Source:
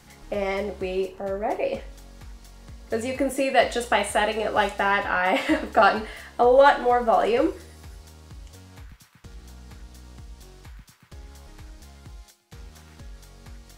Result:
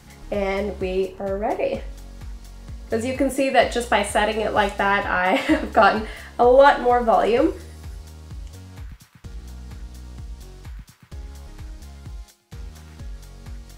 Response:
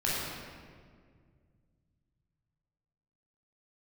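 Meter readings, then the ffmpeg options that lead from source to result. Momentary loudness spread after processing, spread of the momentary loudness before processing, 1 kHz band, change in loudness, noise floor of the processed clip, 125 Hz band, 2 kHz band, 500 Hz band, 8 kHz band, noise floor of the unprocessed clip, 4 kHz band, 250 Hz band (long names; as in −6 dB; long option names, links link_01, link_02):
23 LU, 12 LU, +2.5 dB, +2.5 dB, −48 dBFS, +7.0 dB, +2.0 dB, +3.0 dB, +2.0 dB, −53 dBFS, +2.0 dB, +4.5 dB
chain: -af "equalizer=frequency=72:width=0.33:gain=5.5,volume=2dB"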